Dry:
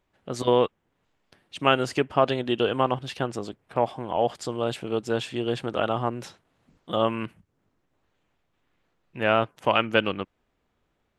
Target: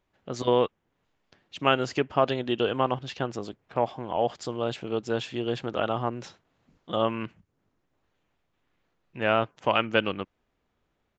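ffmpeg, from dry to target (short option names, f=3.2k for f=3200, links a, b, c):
-af "aresample=16000,aresample=44100,volume=-2dB"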